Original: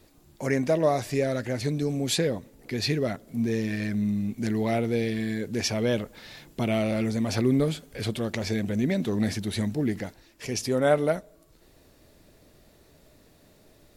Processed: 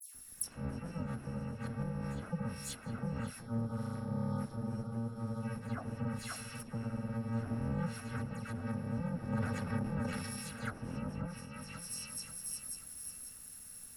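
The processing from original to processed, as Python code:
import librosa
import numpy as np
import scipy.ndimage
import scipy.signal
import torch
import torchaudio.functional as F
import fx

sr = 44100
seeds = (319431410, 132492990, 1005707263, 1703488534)

y = fx.bit_reversed(x, sr, seeds[0], block=128)
y = fx.echo_feedback(y, sr, ms=536, feedback_pct=39, wet_db=-11.5)
y = fx.spec_erase(y, sr, start_s=3.37, length_s=1.98, low_hz=1500.0, high_hz=3000.0)
y = fx.dispersion(y, sr, late='lows', ms=147.0, hz=2700.0)
y = 10.0 ** (-23.5 / 20.0) * np.tanh(y / 10.0 ** (-23.5 / 20.0))
y = fx.graphic_eq_15(y, sr, hz=(250, 1600, 10000), db=(7, 9, 10))
y = fx.env_lowpass_down(y, sr, base_hz=750.0, full_db=-21.5)
y = fx.high_shelf(y, sr, hz=5100.0, db=9.5)
y = fx.transient(y, sr, attack_db=3, sustain_db=7, at=(9.32, 10.48))
y = y * 10.0 ** (-4.0 / 20.0)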